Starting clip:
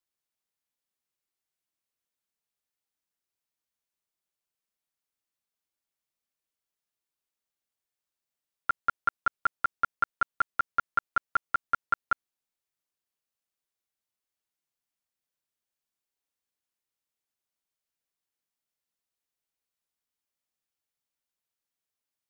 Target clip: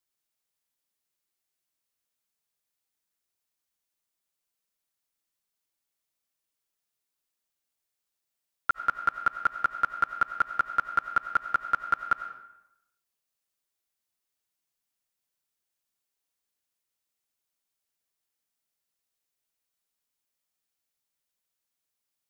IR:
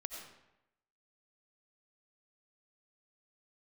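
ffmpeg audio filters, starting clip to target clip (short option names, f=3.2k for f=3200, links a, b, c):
-filter_complex "[0:a]asplit=2[a][b];[1:a]atrim=start_sample=2205,highshelf=f=3.8k:g=8[c];[b][c]afir=irnorm=-1:irlink=0,volume=0dB[d];[a][d]amix=inputs=2:normalize=0,volume=-3dB"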